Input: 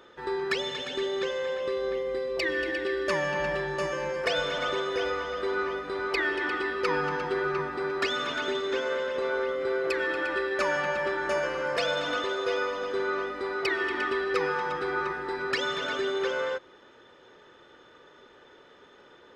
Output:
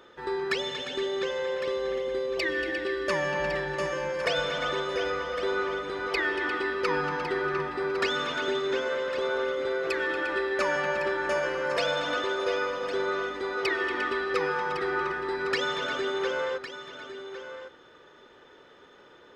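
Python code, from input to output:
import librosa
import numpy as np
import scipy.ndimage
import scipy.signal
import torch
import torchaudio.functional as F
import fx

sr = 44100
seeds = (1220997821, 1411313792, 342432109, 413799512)

y = x + 10.0 ** (-11.5 / 20.0) * np.pad(x, (int(1107 * sr / 1000.0), 0))[:len(x)]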